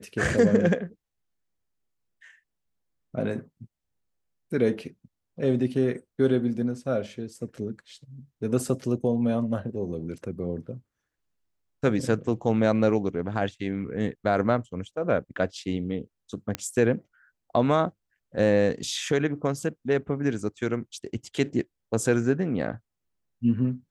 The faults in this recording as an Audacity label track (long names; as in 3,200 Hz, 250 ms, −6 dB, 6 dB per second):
16.550000	16.550000	click −12 dBFS